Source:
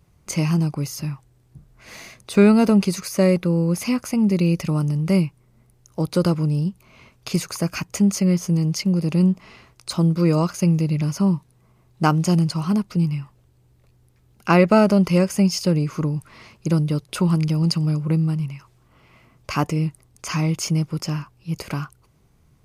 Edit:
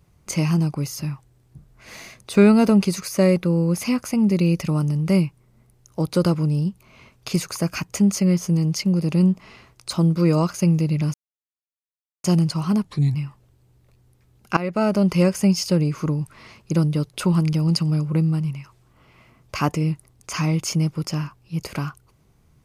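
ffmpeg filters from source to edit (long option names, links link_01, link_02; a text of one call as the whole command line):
ffmpeg -i in.wav -filter_complex "[0:a]asplit=6[link_01][link_02][link_03][link_04][link_05][link_06];[link_01]atrim=end=11.14,asetpts=PTS-STARTPTS,afade=type=out:start_time=11.136:duration=0.004:curve=hsin[link_07];[link_02]atrim=start=11.14:end=12.24,asetpts=PTS-STARTPTS,volume=0[link_08];[link_03]atrim=start=12.24:end=12.854,asetpts=PTS-STARTPTS,afade=type=in:duration=0.004:curve=hsin[link_09];[link_04]atrim=start=12.85:end=13.1,asetpts=PTS-STARTPTS,asetrate=37044,aresample=44100[link_10];[link_05]atrim=start=13.096:end=14.52,asetpts=PTS-STARTPTS,afade=type=out:start_time=1.42:duration=0.004:curve=hsin:silence=0.125893[link_11];[link_06]atrim=start=14.52,asetpts=PTS-STARTPTS,afade=type=in:duration=0.59:silence=0.125893[link_12];[link_07][link_08][link_09]concat=n=3:v=0:a=1[link_13];[link_13][link_10]acrossfade=duration=0.004:curve1=hsin:curve2=hsin[link_14];[link_11][link_12]concat=n=2:v=0:a=1[link_15];[link_14][link_15]acrossfade=duration=0.004:curve1=hsin:curve2=hsin" out.wav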